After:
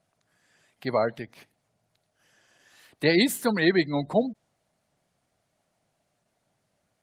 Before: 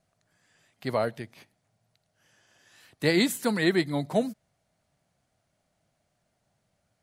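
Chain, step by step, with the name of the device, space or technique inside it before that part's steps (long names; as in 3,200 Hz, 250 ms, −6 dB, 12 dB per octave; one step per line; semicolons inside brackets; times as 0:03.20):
noise-suppressed video call (high-pass filter 150 Hz 6 dB per octave; gate on every frequency bin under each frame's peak −30 dB strong; level +3 dB; Opus 20 kbit/s 48,000 Hz)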